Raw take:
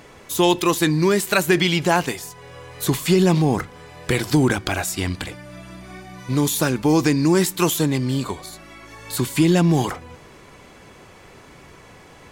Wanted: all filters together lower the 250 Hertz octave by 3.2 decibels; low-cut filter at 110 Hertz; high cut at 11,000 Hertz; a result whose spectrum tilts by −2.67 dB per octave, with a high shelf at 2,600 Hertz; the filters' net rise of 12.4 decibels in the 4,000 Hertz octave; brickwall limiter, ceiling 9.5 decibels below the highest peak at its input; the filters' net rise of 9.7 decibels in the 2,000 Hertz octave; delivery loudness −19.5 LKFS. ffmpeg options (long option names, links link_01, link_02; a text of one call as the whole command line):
ffmpeg -i in.wav -af "highpass=110,lowpass=11000,equalizer=frequency=250:width_type=o:gain=-5,equalizer=frequency=2000:width_type=o:gain=7.5,highshelf=frequency=2600:gain=5.5,equalizer=frequency=4000:width_type=o:gain=8.5,volume=-1.5dB,alimiter=limit=-6dB:level=0:latency=1" out.wav